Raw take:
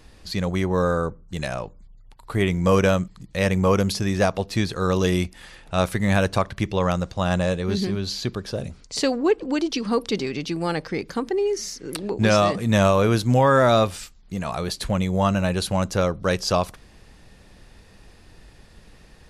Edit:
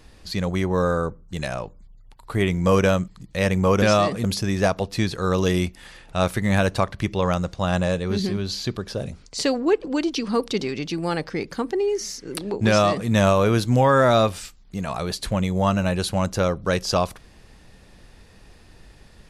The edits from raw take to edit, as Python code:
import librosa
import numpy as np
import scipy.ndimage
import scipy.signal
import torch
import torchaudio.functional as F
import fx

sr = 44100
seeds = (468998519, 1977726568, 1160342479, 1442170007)

y = fx.edit(x, sr, fx.duplicate(start_s=12.25, length_s=0.42, to_s=3.82), tone=tone)